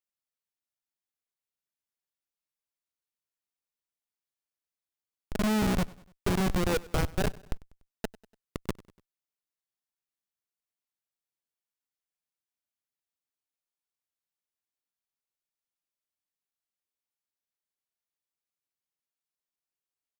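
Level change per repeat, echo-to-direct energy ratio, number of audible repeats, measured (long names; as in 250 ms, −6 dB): −6.5 dB, −20.5 dB, 3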